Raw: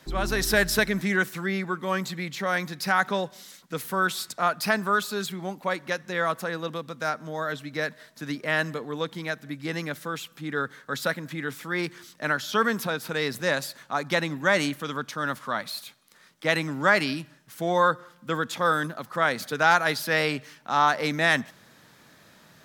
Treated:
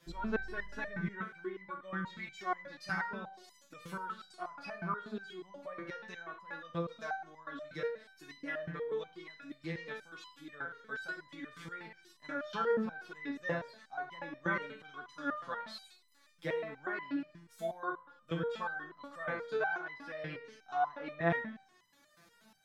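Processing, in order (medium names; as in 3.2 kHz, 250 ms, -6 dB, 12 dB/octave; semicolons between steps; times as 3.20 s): low-pass that closes with the level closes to 1.6 kHz, closed at -23 dBFS; Schroeder reverb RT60 0.66 s, combs from 32 ms, DRR 8 dB; resonator arpeggio 8.3 Hz 170–1000 Hz; trim +3 dB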